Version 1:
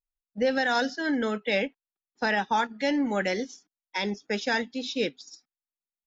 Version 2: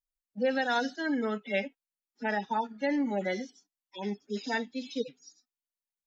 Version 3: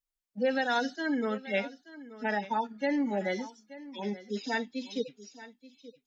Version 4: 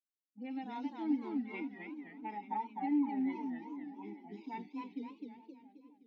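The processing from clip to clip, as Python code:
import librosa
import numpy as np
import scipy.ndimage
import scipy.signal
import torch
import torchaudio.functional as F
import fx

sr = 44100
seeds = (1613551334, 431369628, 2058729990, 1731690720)

y1 = fx.hpss_only(x, sr, part='harmonic')
y1 = fx.high_shelf(y1, sr, hz=4000.0, db=5.5)
y1 = y1 * librosa.db_to_amplitude(-3.0)
y2 = y1 + 10.0 ** (-17.0 / 20.0) * np.pad(y1, (int(879 * sr / 1000.0), 0))[:len(y1)]
y3 = fx.env_lowpass(y2, sr, base_hz=370.0, full_db=-30.0)
y3 = fx.vowel_filter(y3, sr, vowel='u')
y3 = fx.echo_warbled(y3, sr, ms=261, feedback_pct=48, rate_hz=2.8, cents=195, wet_db=-4.0)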